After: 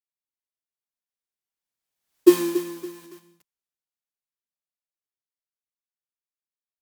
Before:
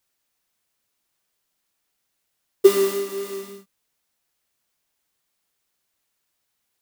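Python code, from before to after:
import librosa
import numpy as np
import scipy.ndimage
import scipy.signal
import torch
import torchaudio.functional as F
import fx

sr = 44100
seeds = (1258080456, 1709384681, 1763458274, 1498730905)

y = fx.doppler_pass(x, sr, speed_mps=52, closest_m=4.0, pass_at_s=2.2)
y = fx.echo_crushed(y, sr, ms=281, feedback_pct=35, bits=7, wet_db=-12.5)
y = y * librosa.db_to_amplitude(3.5)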